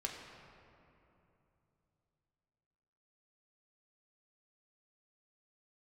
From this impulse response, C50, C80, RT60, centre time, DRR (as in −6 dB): 3.5 dB, 4.0 dB, 3.0 s, 81 ms, −0.5 dB